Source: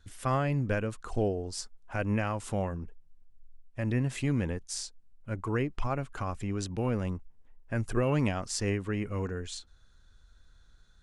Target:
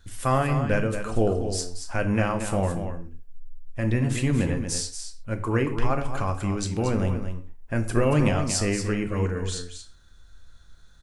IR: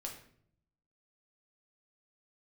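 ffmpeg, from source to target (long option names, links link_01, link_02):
-filter_complex "[0:a]aecho=1:1:230:0.376,asplit=2[link_01][link_02];[1:a]atrim=start_sample=2205,afade=type=out:start_time=0.19:duration=0.01,atrim=end_sample=8820,highshelf=frequency=8300:gain=10[link_03];[link_02][link_03]afir=irnorm=-1:irlink=0,volume=3dB[link_04];[link_01][link_04]amix=inputs=2:normalize=0"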